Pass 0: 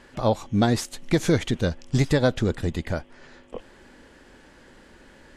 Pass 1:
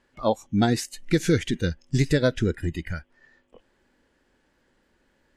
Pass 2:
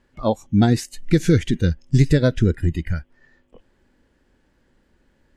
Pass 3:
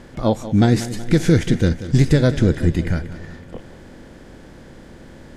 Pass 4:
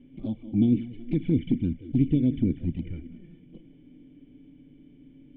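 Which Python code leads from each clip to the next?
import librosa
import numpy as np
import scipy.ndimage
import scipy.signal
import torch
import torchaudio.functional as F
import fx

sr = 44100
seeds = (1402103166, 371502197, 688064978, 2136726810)

y1 = fx.noise_reduce_blind(x, sr, reduce_db=16)
y2 = fx.low_shelf(y1, sr, hz=250.0, db=10.0)
y3 = fx.bin_compress(y2, sr, power=0.6)
y3 = fx.echo_feedback(y3, sr, ms=186, feedback_pct=56, wet_db=-14.0)
y3 = F.gain(torch.from_numpy(y3), -1.0).numpy()
y4 = fx.formant_cascade(y3, sr, vowel='i')
y4 = fx.env_flanger(y4, sr, rest_ms=7.9, full_db=-17.0)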